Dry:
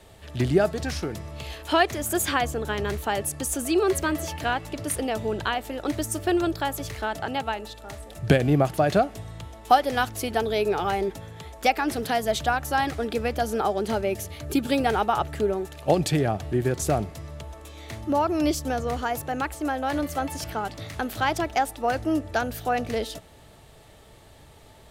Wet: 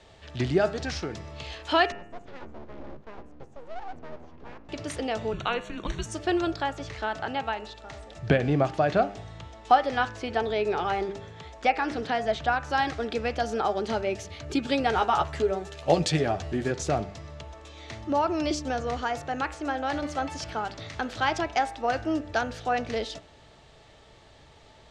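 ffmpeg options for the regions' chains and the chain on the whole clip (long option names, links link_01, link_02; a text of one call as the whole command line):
ffmpeg -i in.wav -filter_complex "[0:a]asettb=1/sr,asplit=3[link_01][link_02][link_03];[link_01]atrim=end=1.924[link_04];[link_02]atrim=start=1.92:end=4.69,asetpts=PTS-STARTPTS,afade=type=in:duration=0.004:curve=qsin,afade=type=out:start_time=2.766:duration=0.004:curve=qsin,bandpass=frequency=160:width_type=q:width=1.5,aeval=exprs='abs(val(0))':channel_layout=same[link_05];[link_03]atrim=start=4.686[link_06];[link_04][link_05]acrossfade=duration=0.004:curve1=hsin:curve2=qsin[link_07];[link_07][link_06]acrossfade=duration=0.004:curve1=qsin:curve2=hsin,asettb=1/sr,asplit=3[link_08][link_09][link_10];[link_08]atrim=end=5.334[link_11];[link_09]atrim=start=5.33:end=6.06,asetpts=PTS-STARTPTS,afade=type=in:duration=0.004:curve=qsin,afade=type=out:start_time=0.726:duration=0.004:curve=qsin,afreqshift=-250,asuperstop=centerf=5000:order=8:qfactor=5.1[link_12];[link_10]atrim=start=6.056[link_13];[link_11][link_12]acrossfade=duration=0.004:curve1=hsin:curve2=qsin[link_14];[link_14][link_13]acrossfade=duration=0.004:curve1=qsin:curve2=hsin,asettb=1/sr,asplit=3[link_15][link_16][link_17];[link_15]atrim=end=6.624[link_18];[link_16]atrim=start=6.62:end=12.7,asetpts=PTS-STARTPTS,afade=type=in:duration=0.004:curve=qsin,afade=type=out:start_time=6.076:duration=0.004:curve=qsin,lowpass=frequency=11000:width=0.5412,lowpass=frequency=11000:width=1.3066,acrossover=split=3000[link_19][link_20];[link_20]acompressor=threshold=-43dB:ratio=4:attack=1:release=60[link_21];[link_19][link_21]amix=inputs=2:normalize=0[link_22];[link_17]atrim=start=12.696[link_23];[link_18][link_22]acrossfade=duration=0.004:curve1=hsin:curve2=qsin[link_24];[link_24][link_23]acrossfade=duration=0.004:curve1=qsin:curve2=hsin,asettb=1/sr,asplit=3[link_25][link_26][link_27];[link_25]atrim=end=14.954[link_28];[link_26]atrim=start=14.95:end=16.71,asetpts=PTS-STARTPTS,afade=type=in:duration=0.004:curve=qsin,afade=type=out:start_time=1.756:duration=0.004:curve=qsin,highshelf=frequency=9000:gain=10.5,asplit=2[link_29][link_30];[link_30]adelay=12,volume=-6dB[link_31];[link_29][link_31]amix=inputs=2:normalize=0,atrim=end_sample=77616[link_32];[link_27]atrim=start=16.706[link_33];[link_28][link_32]acrossfade=duration=0.004:curve1=hsin:curve2=qsin[link_34];[link_34][link_33]acrossfade=duration=0.004:curve1=qsin:curve2=hsin,lowpass=frequency=6500:width=0.5412,lowpass=frequency=6500:width=1.3066,lowshelf=frequency=470:gain=-4.5,bandreject=frequency=99.96:width_type=h:width=4,bandreject=frequency=199.92:width_type=h:width=4,bandreject=frequency=299.88:width_type=h:width=4,bandreject=frequency=399.84:width_type=h:width=4,bandreject=frequency=499.8:width_type=h:width=4,bandreject=frequency=599.76:width_type=h:width=4,bandreject=frequency=699.72:width_type=h:width=4,bandreject=frequency=799.68:width_type=h:width=4,bandreject=frequency=899.64:width_type=h:width=4,bandreject=frequency=999.6:width_type=h:width=4,bandreject=frequency=1099.56:width_type=h:width=4,bandreject=frequency=1199.52:width_type=h:width=4,bandreject=frequency=1299.48:width_type=h:width=4,bandreject=frequency=1399.44:width_type=h:width=4,bandreject=frequency=1499.4:width_type=h:width=4,bandreject=frequency=1599.36:width_type=h:width=4,bandreject=frequency=1699.32:width_type=h:width=4,bandreject=frequency=1799.28:width_type=h:width=4,bandreject=frequency=1899.24:width_type=h:width=4,bandreject=frequency=1999.2:width_type=h:width=4,bandreject=frequency=2099.16:width_type=h:width=4,bandreject=frequency=2199.12:width_type=h:width=4,bandreject=frequency=2299.08:width_type=h:width=4,bandreject=frequency=2399.04:width_type=h:width=4,bandreject=frequency=2499:width_type=h:width=4,bandreject=frequency=2598.96:width_type=h:width=4,bandreject=frequency=2698.92:width_type=h:width=4,bandreject=frequency=2798.88:width_type=h:width=4,bandreject=frequency=2898.84:width_type=h:width=4" out.wav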